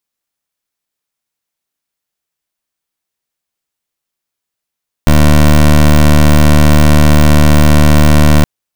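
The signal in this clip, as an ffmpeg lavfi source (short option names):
-f lavfi -i "aevalsrc='0.562*(2*lt(mod(75.2*t,1),0.18)-1)':d=3.37:s=44100"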